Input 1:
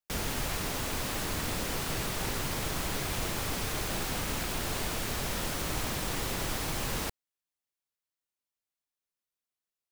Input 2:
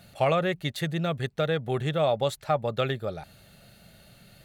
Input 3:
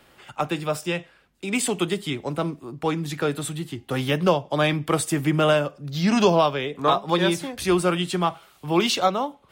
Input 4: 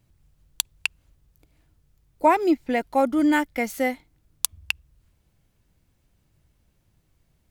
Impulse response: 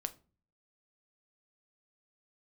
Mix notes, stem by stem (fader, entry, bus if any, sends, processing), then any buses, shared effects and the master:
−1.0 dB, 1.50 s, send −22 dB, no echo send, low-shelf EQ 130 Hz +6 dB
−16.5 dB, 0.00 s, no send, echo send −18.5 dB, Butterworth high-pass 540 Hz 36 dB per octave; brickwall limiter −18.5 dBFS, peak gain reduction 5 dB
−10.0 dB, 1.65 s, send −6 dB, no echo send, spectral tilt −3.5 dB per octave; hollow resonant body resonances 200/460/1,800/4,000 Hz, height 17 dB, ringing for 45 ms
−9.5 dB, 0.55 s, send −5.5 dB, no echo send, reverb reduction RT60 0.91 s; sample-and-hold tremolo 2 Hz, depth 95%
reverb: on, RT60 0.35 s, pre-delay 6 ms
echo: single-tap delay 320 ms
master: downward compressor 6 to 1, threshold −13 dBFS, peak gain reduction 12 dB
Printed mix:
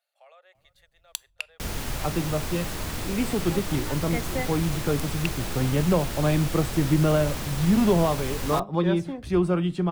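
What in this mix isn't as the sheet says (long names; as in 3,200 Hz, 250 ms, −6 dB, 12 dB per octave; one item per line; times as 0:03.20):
stem 2 −16.5 dB → −26.5 dB
stem 3: missing hollow resonant body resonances 200/460/1,800/4,000 Hz, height 17 dB, ringing for 45 ms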